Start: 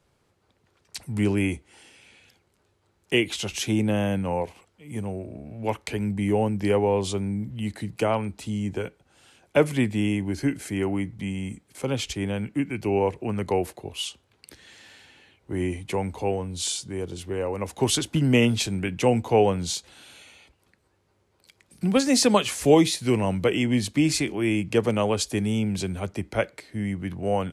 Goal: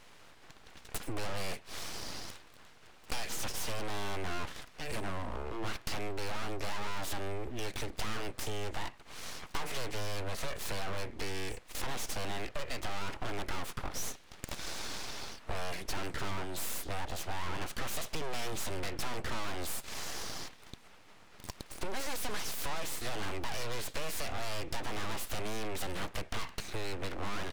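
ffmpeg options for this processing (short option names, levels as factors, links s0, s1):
-filter_complex "[0:a]asplit=2[s0][s1];[s1]highpass=f=720:p=1,volume=35.5,asoftclip=type=tanh:threshold=0.501[s2];[s0][s2]amix=inputs=2:normalize=0,lowpass=f=2900:p=1,volume=0.501,acompressor=threshold=0.0355:ratio=3,aeval=exprs='abs(val(0))':c=same,volume=0.531"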